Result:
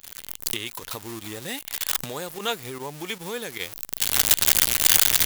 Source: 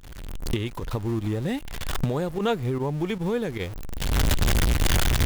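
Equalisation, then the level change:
spectral tilt +4.5 dB per octave
−1.5 dB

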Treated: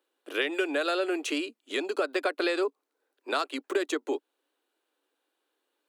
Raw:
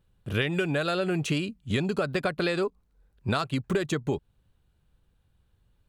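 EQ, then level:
Butterworth high-pass 280 Hz 72 dB per octave
0.0 dB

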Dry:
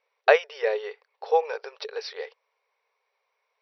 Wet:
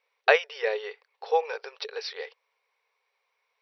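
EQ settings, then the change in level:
parametric band 3,200 Hz +5.5 dB 2.3 octaves
notch filter 610 Hz, Q 12
−3.0 dB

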